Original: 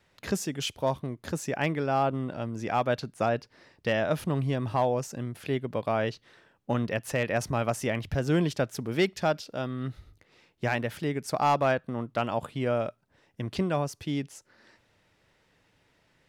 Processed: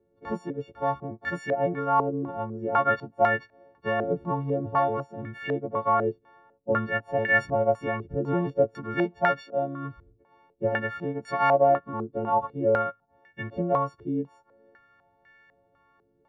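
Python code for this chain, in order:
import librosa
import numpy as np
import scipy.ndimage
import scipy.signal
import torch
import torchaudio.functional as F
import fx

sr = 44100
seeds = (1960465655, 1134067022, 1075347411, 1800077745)

y = fx.freq_snap(x, sr, grid_st=4)
y = fx.filter_held_lowpass(y, sr, hz=4.0, low_hz=410.0, high_hz=1800.0)
y = y * 10.0 ** (-2.5 / 20.0)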